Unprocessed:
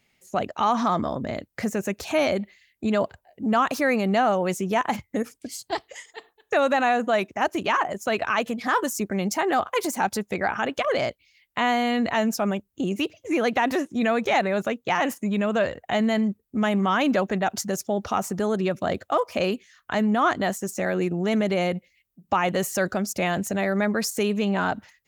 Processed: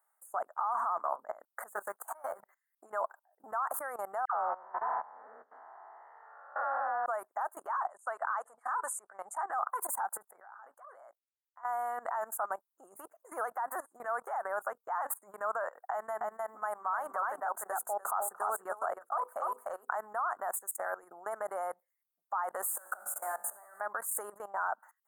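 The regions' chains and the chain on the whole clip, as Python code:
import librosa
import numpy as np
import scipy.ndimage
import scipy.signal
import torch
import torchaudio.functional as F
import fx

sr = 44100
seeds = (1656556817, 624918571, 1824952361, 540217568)

y = fx.chain(x, sr, fx.law_mismatch(coded='A'),
    fx.auto_swell(attack_ms=349.0),
    fx.doubler(ms=15.0, db=-6), at=(1.75, 2.41))
y = fx.chain(y, sr, fx.spec_blur(span_ms=341.0),
    fx.steep_lowpass(hz=3100.0, slope=36),
    fx.dispersion(late='lows', ms=118.0, hz=960.0), at=(4.25, 7.06))
y = fx.chain(y, sr, fx.lowpass(hz=9200.0, slope=24),
    fx.peak_eq(hz=260.0, db=-7.0, octaves=1.7), at=(7.71, 9.58))
y = fx.chain(y, sr, fx.level_steps(step_db=19),
    fx.doubler(ms=16.0, db=-12.5), at=(10.33, 11.65))
y = fx.chain(y, sr, fx.hum_notches(base_hz=50, count=10),
    fx.echo_single(ms=297, db=-5.0), at=(15.91, 20.01))
y = fx.chain(y, sr, fx.over_compress(threshold_db=-28.0, ratio=-1.0),
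    fx.leveller(passes=2),
    fx.comb_fb(f0_hz=51.0, decay_s=0.94, harmonics='all', damping=0.0, mix_pct=80), at=(22.67, 23.81))
y = scipy.signal.sosfilt(scipy.signal.cheby1(3, 1.0, 850.0, 'highpass', fs=sr, output='sos'), y)
y = fx.level_steps(y, sr, step_db=19)
y = scipy.signal.sosfilt(scipy.signal.ellip(3, 1.0, 40, [1400.0, 8800.0], 'bandstop', fs=sr, output='sos'), y)
y = y * librosa.db_to_amplitude(7.0)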